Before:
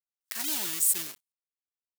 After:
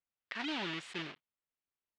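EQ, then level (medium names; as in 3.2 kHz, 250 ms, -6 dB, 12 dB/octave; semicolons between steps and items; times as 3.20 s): low-pass 3.2 kHz 24 dB/octave; bass shelf 210 Hz +4.5 dB; +2.0 dB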